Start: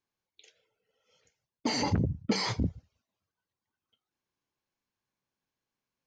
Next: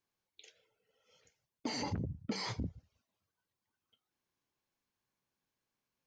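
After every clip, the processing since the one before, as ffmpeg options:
-af "acompressor=threshold=-42dB:ratio=2"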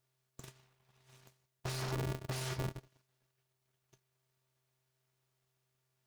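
-af "alimiter=level_in=13.5dB:limit=-24dB:level=0:latency=1:release=18,volume=-13.5dB,aeval=exprs='abs(val(0))':c=same,aeval=exprs='val(0)*sgn(sin(2*PI*130*n/s))':c=same,volume=7dB"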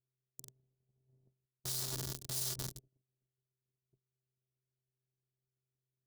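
-filter_complex "[0:a]acrossover=split=490[a][b];[b]aeval=exprs='val(0)*gte(abs(val(0)),0.00891)':c=same[c];[a][c]amix=inputs=2:normalize=0,aexciter=amount=4.5:drive=7.1:freq=3.5k,volume=-7dB"

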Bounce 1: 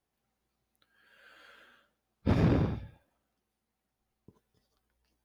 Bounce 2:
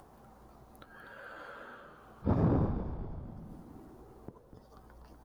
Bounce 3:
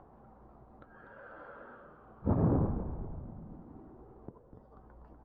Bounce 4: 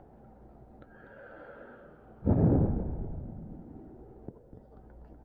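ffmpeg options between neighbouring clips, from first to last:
-filter_complex "[0:a]highshelf=f=1.6k:t=q:w=1.5:g=-12.5,acompressor=mode=upward:threshold=-31dB:ratio=2.5,asplit=9[a][b][c][d][e][f][g][h][i];[b]adelay=245,afreqshift=-81,volume=-9dB[j];[c]adelay=490,afreqshift=-162,volume=-13.3dB[k];[d]adelay=735,afreqshift=-243,volume=-17.6dB[l];[e]adelay=980,afreqshift=-324,volume=-21.9dB[m];[f]adelay=1225,afreqshift=-405,volume=-26.2dB[n];[g]adelay=1470,afreqshift=-486,volume=-30.5dB[o];[h]adelay=1715,afreqshift=-567,volume=-34.8dB[p];[i]adelay=1960,afreqshift=-648,volume=-39.1dB[q];[a][j][k][l][m][n][o][p][q]amix=inputs=9:normalize=0,volume=-2.5dB"
-af "lowpass=1.3k"
-af "equalizer=f=1.1k:w=3:g=-15,volume=4dB"

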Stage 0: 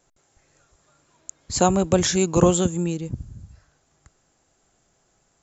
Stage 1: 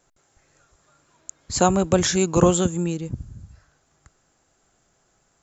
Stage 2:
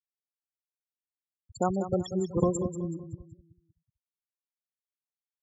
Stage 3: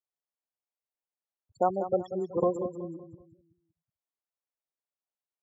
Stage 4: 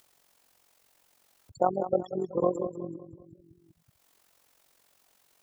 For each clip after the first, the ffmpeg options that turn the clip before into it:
-af "equalizer=f=1.4k:t=o:w=0.77:g=3"
-af "afftfilt=real='re*gte(hypot(re,im),0.282)':imag='im*gte(hypot(re,im),0.282)':win_size=1024:overlap=0.75,aecho=1:1:188|376|564|752:0.282|0.0986|0.0345|0.0121,volume=-9dB"
-af "bandpass=f=670:t=q:w=1.3:csg=0,volume=4.5dB"
-af "tremolo=f=45:d=0.71,acompressor=mode=upward:threshold=-45dB:ratio=2.5,volume=3.5dB"

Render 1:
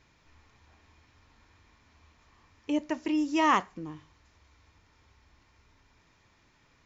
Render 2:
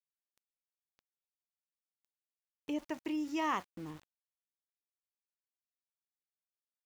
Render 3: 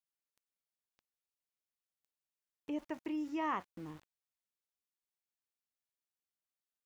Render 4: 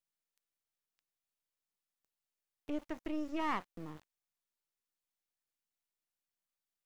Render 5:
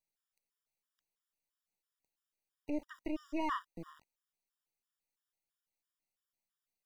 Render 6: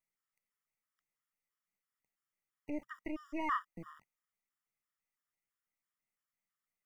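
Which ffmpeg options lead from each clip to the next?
-af "highpass=44,acompressor=threshold=-48dB:ratio=1.5,aeval=exprs='val(0)*gte(abs(val(0)),0.00299)':c=same"
-filter_complex "[0:a]acrossover=split=2600[a][b];[b]acompressor=threshold=-60dB:ratio=4:attack=1:release=60[c];[a][c]amix=inputs=2:normalize=0,volume=-2dB"
-af "aeval=exprs='if(lt(val(0),0),0.251*val(0),val(0))':c=same,volume=3dB"
-af "afftfilt=real='re*gt(sin(2*PI*3*pts/sr)*(1-2*mod(floor(b*sr/1024/960),2)),0)':imag='im*gt(sin(2*PI*3*pts/sr)*(1-2*mod(floor(b*sr/1024/960),2)),0)':win_size=1024:overlap=0.75,volume=1.5dB"
-af "equalizer=f=125:t=o:w=0.33:g=7,equalizer=f=200:t=o:w=0.33:g=7,equalizer=f=1.25k:t=o:w=0.33:g=10,equalizer=f=2k:t=o:w=0.33:g=11,equalizer=f=4k:t=o:w=0.33:g=-12,volume=-3.5dB"

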